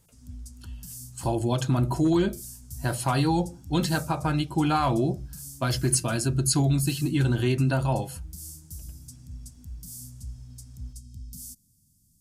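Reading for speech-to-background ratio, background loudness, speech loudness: 16.5 dB, -42.0 LUFS, -25.5 LUFS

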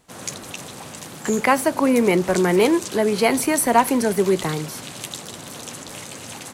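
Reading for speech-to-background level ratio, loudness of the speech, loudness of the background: 14.0 dB, -19.5 LUFS, -33.5 LUFS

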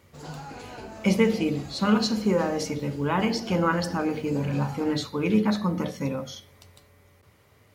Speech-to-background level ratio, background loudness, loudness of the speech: 15.5 dB, -41.5 LUFS, -26.0 LUFS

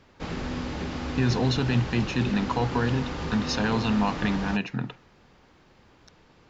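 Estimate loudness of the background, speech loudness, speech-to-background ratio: -33.0 LUFS, -27.0 LUFS, 6.0 dB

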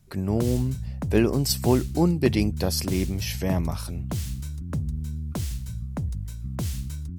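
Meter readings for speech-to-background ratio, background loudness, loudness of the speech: 7.0 dB, -32.0 LUFS, -25.0 LUFS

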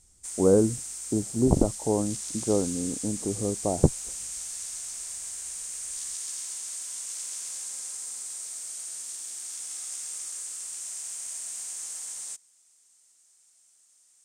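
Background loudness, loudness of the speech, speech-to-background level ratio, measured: -33.5 LUFS, -26.5 LUFS, 7.0 dB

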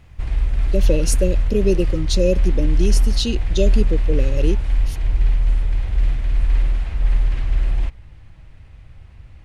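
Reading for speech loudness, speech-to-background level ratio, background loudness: -23.0 LUFS, -1.0 dB, -22.0 LUFS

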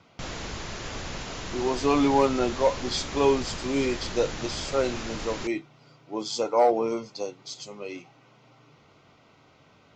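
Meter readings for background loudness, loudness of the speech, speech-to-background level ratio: -35.5 LUFS, -26.5 LUFS, 9.0 dB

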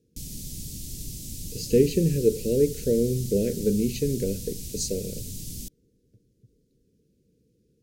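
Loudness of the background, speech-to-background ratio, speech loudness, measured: -36.5 LUFS, 11.0 dB, -25.5 LUFS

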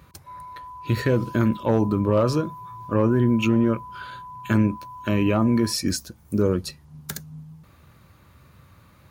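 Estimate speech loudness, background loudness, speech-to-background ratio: -22.5 LUFS, -40.0 LUFS, 17.5 dB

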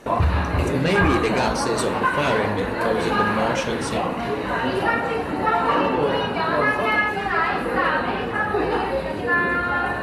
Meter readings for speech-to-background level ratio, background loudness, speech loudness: -3.0 dB, -22.0 LUFS, -25.0 LUFS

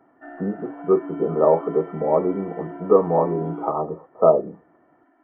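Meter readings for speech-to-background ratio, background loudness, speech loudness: 13.5 dB, -35.5 LUFS, -22.0 LUFS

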